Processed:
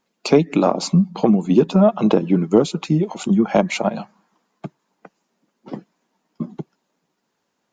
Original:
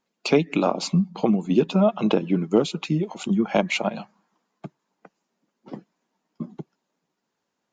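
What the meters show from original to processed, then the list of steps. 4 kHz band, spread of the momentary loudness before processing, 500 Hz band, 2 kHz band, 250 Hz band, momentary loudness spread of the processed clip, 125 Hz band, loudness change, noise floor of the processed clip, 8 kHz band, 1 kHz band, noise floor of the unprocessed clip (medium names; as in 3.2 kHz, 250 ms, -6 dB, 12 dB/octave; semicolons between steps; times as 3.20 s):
+1.0 dB, 18 LU, +5.0 dB, 0.0 dB, +5.5 dB, 18 LU, +5.5 dB, +5.0 dB, -74 dBFS, +4.5 dB, +4.5 dB, -80 dBFS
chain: dynamic bell 2.8 kHz, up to -8 dB, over -44 dBFS, Q 1.2; in parallel at -10 dB: saturation -14.5 dBFS, distortion -13 dB; on the sum: trim +3.5 dB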